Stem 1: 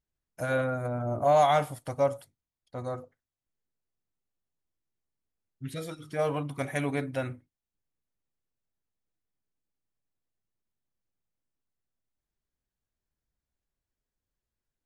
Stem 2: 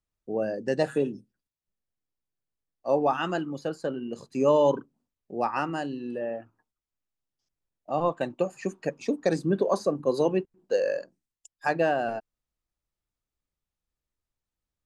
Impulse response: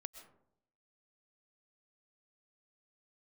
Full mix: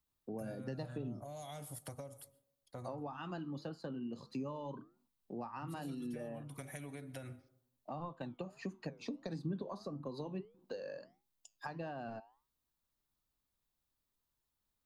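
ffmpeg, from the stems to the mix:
-filter_complex "[0:a]acrossover=split=480|3000[link_01][link_02][link_03];[link_02]acompressor=threshold=-34dB:ratio=6[link_04];[link_01][link_04][link_03]amix=inputs=3:normalize=0,highshelf=frequency=8500:gain=7,acompressor=threshold=-37dB:ratio=6,volume=-7dB,asplit=2[link_05][link_06];[link_06]volume=-5dB[link_07];[1:a]equalizer=frequency=125:width_type=o:width=1:gain=4,equalizer=frequency=250:width_type=o:width=1:gain=8,equalizer=frequency=1000:width_type=o:width=1:gain=11,equalizer=frequency=4000:width_type=o:width=1:gain=11,equalizer=frequency=8000:width_type=o:width=1:gain=-8,acompressor=threshold=-18dB:ratio=6,flanger=delay=6.6:depth=3:regen=-84:speed=1.6:shape=sinusoidal,volume=-3.5dB[link_08];[2:a]atrim=start_sample=2205[link_09];[link_07][link_09]afir=irnorm=-1:irlink=0[link_10];[link_05][link_08][link_10]amix=inputs=3:normalize=0,highshelf=frequency=6100:gain=7,acrossover=split=160[link_11][link_12];[link_12]acompressor=threshold=-45dB:ratio=4[link_13];[link_11][link_13]amix=inputs=2:normalize=0"

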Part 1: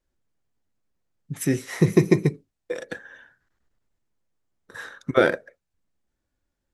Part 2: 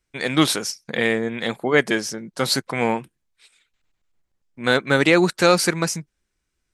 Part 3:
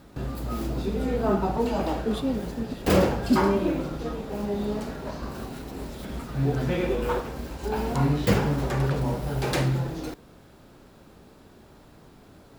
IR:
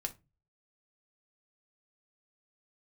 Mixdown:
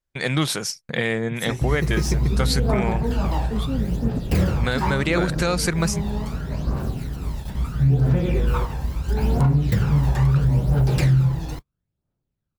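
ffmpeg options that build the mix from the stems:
-filter_complex "[0:a]lowshelf=frequency=460:gain=-7.5,volume=-4.5dB[link_01];[1:a]volume=0dB[link_02];[2:a]aphaser=in_gain=1:out_gain=1:delay=1.2:decay=0.54:speed=0.75:type=triangular,adelay=1450,volume=0dB[link_03];[link_02][link_03]amix=inputs=2:normalize=0,agate=range=-38dB:threshold=-35dB:ratio=16:detection=peak,alimiter=limit=-9dB:level=0:latency=1:release=218,volume=0dB[link_04];[link_01][link_04]amix=inputs=2:normalize=0,lowshelf=frequency=190:width_type=q:width=1.5:gain=6.5,alimiter=limit=-10dB:level=0:latency=1:release=229"

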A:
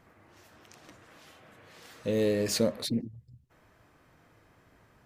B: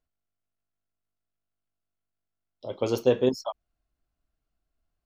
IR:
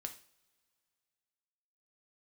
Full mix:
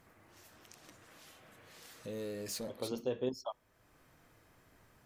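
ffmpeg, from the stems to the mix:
-filter_complex "[0:a]aemphasis=mode=production:type=cd,asoftclip=type=tanh:threshold=-21.5dB,volume=-4dB,asplit=2[link_01][link_02];[1:a]volume=2.5dB,asplit=2[link_03][link_04];[link_04]volume=-22.5dB[link_05];[link_02]apad=whole_len=222989[link_06];[link_03][link_06]sidechaincompress=threshold=-36dB:ratio=8:attack=16:release=1020[link_07];[2:a]atrim=start_sample=2205[link_08];[link_05][link_08]afir=irnorm=-1:irlink=0[link_09];[link_01][link_07][link_09]amix=inputs=3:normalize=0,acompressor=threshold=-55dB:ratio=1.5"

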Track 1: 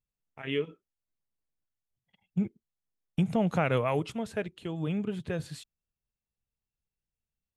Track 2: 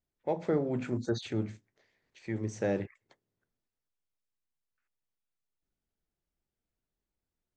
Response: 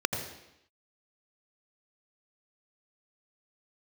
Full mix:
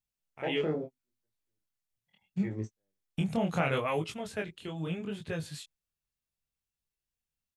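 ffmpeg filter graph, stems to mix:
-filter_complex "[0:a]tiltshelf=frequency=1400:gain=-3,volume=2.5dB,asplit=2[link_01][link_02];[1:a]adelay=150,volume=-0.5dB[link_03];[link_02]apad=whole_len=340183[link_04];[link_03][link_04]sidechaingate=range=-56dB:threshold=-55dB:ratio=16:detection=peak[link_05];[link_01][link_05]amix=inputs=2:normalize=0,flanger=delay=18.5:depth=7.4:speed=0.75"

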